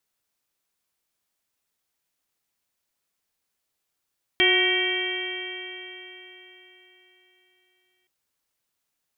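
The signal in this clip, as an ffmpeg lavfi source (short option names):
-f lavfi -i "aevalsrc='0.075*pow(10,-3*t/3.95)*sin(2*PI*364.55*t)+0.0266*pow(10,-3*t/3.95)*sin(2*PI*732.35*t)+0.0112*pow(10,-3*t/3.95)*sin(2*PI*1106.64*t)+0.02*pow(10,-3*t/3.95)*sin(2*PI*1490.53*t)+0.075*pow(10,-3*t/3.95)*sin(2*PI*1887.02*t)+0.0944*pow(10,-3*t/3.95)*sin(2*PI*2298.91*t)+0.0376*pow(10,-3*t/3.95)*sin(2*PI*2728.86*t)+0.106*pow(10,-3*t/3.95)*sin(2*PI*3179.29*t)':d=3.67:s=44100"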